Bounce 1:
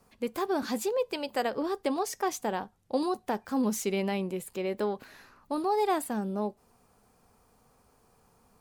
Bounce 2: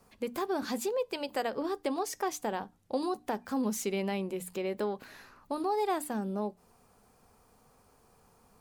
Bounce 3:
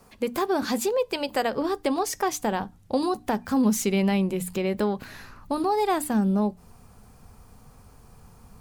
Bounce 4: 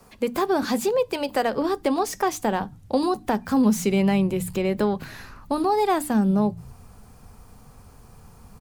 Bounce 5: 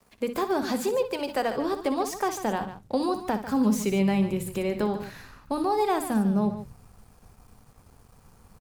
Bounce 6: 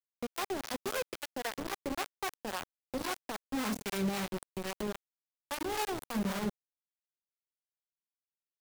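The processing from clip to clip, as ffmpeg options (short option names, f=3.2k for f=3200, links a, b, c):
-filter_complex "[0:a]bandreject=f=60:t=h:w=6,bandreject=f=120:t=h:w=6,bandreject=f=180:t=h:w=6,bandreject=f=240:t=h:w=6,bandreject=f=300:t=h:w=6,asplit=2[a][b];[b]acompressor=threshold=-35dB:ratio=6,volume=2dB[c];[a][c]amix=inputs=2:normalize=0,volume=-6dB"
-af "asubboost=boost=3.5:cutoff=200,volume=8dB"
-filter_complex "[0:a]acrossover=split=200|1700[a][b][c];[a]asplit=7[d][e][f][g][h][i][j];[e]adelay=117,afreqshift=-41,volume=-12dB[k];[f]adelay=234,afreqshift=-82,volume=-17dB[l];[g]adelay=351,afreqshift=-123,volume=-22.1dB[m];[h]adelay=468,afreqshift=-164,volume=-27.1dB[n];[i]adelay=585,afreqshift=-205,volume=-32.1dB[o];[j]adelay=702,afreqshift=-246,volume=-37.2dB[p];[d][k][l][m][n][o][p]amix=inputs=7:normalize=0[q];[c]asoftclip=type=tanh:threshold=-30.5dB[r];[q][b][r]amix=inputs=3:normalize=0,volume=2.5dB"
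-af "aecho=1:1:61.22|145.8:0.282|0.251,aeval=exprs='sgn(val(0))*max(abs(val(0))-0.002,0)':c=same,volume=-4dB"
-filter_complex "[0:a]acrusher=bits=3:mix=0:aa=0.000001,acrossover=split=550[a][b];[a]aeval=exprs='val(0)*(1-0.7/2+0.7/2*cos(2*PI*3.7*n/s))':c=same[c];[b]aeval=exprs='val(0)*(1-0.7/2-0.7/2*cos(2*PI*3.7*n/s))':c=same[d];[c][d]amix=inputs=2:normalize=0,volume=-8.5dB"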